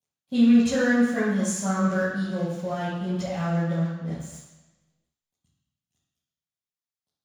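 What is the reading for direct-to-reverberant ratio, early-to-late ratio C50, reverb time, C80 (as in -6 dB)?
-13.0 dB, -1.0 dB, 1.1 s, 2.5 dB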